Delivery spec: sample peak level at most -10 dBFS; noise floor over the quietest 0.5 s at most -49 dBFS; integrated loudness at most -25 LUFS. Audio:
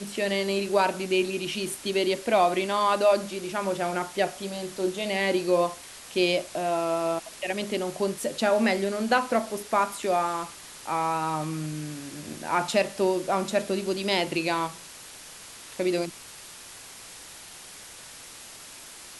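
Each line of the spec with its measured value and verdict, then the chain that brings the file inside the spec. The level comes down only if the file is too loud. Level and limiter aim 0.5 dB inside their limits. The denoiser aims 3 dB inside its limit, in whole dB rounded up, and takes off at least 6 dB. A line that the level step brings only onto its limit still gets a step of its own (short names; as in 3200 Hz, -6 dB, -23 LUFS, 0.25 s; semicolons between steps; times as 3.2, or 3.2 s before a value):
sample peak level -9.0 dBFS: fail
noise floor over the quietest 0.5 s -45 dBFS: fail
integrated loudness -26.5 LUFS: OK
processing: denoiser 7 dB, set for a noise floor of -45 dBFS; limiter -10.5 dBFS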